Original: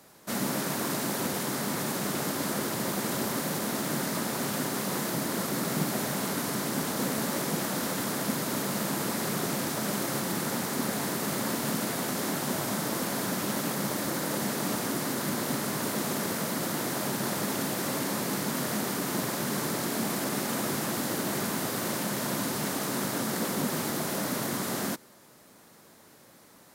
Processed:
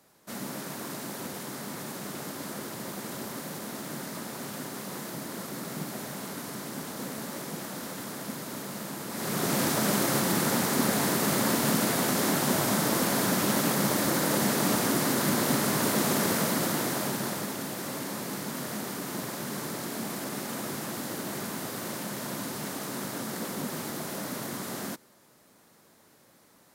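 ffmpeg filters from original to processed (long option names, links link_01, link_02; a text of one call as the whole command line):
ffmpeg -i in.wav -af "volume=4.5dB,afade=type=in:start_time=9.09:duration=0.53:silence=0.266073,afade=type=out:start_time=16.36:duration=1.19:silence=0.354813" out.wav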